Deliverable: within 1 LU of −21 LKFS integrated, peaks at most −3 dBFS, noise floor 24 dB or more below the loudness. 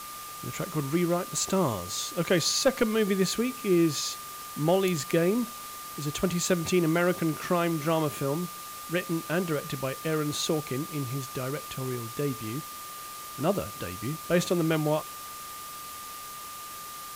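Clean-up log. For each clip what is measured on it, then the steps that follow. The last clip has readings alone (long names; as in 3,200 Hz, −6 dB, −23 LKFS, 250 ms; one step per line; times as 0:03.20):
interfering tone 1,200 Hz; level of the tone −41 dBFS; background noise floor −41 dBFS; target noise floor −53 dBFS; integrated loudness −29.0 LKFS; sample peak −13.5 dBFS; target loudness −21.0 LKFS
→ notch filter 1,200 Hz, Q 30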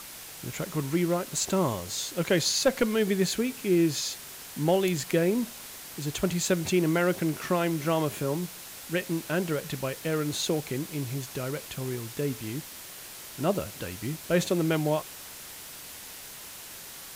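interfering tone none found; background noise floor −44 dBFS; target noise floor −53 dBFS
→ broadband denoise 9 dB, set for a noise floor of −44 dBFS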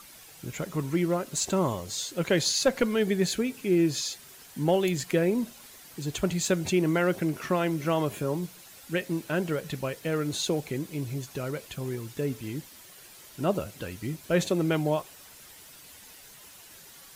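background noise floor −50 dBFS; target noise floor −53 dBFS
→ broadband denoise 6 dB, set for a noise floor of −50 dBFS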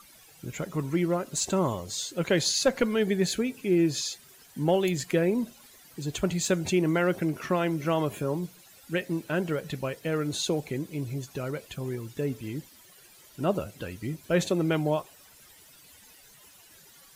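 background noise floor −55 dBFS; integrated loudness −28.5 LKFS; sample peak −14.0 dBFS; target loudness −21.0 LKFS
→ level +7.5 dB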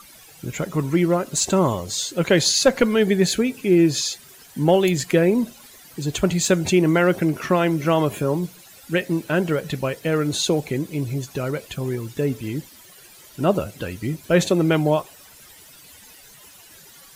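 integrated loudness −21.0 LKFS; sample peak −6.5 dBFS; background noise floor −47 dBFS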